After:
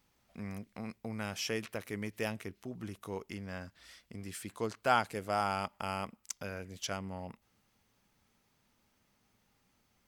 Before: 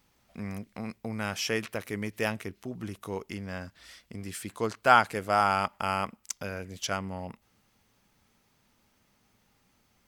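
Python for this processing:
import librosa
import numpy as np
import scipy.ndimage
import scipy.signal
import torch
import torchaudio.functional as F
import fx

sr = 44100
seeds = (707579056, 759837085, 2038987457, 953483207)

y = fx.dynamic_eq(x, sr, hz=1400.0, q=0.87, threshold_db=-36.0, ratio=4.0, max_db=-5)
y = F.gain(torch.from_numpy(y), -5.0).numpy()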